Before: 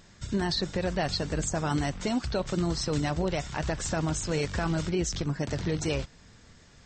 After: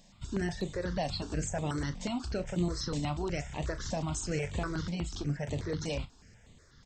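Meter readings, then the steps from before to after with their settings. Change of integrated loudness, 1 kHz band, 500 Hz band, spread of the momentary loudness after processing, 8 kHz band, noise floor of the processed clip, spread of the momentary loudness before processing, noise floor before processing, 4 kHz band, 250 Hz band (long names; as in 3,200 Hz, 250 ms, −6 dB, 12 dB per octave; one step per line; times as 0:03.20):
−5.0 dB, −5.5 dB, −5.5 dB, 4 LU, −6.5 dB, −59 dBFS, 3 LU, −55 dBFS, −7.0 dB, −5.0 dB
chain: double-tracking delay 34 ms −12.5 dB
step-sequenced phaser 8.2 Hz 370–5,300 Hz
level −2.5 dB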